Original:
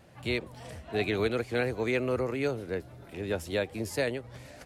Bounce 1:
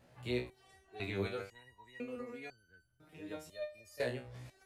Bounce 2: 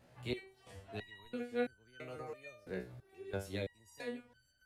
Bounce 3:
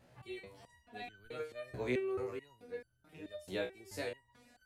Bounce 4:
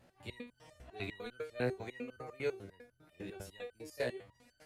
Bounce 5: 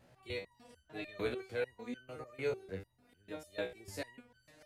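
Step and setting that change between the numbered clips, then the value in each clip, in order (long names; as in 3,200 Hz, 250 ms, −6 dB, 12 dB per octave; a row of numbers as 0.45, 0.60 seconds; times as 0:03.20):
step-sequenced resonator, speed: 2, 3, 4.6, 10, 6.7 Hertz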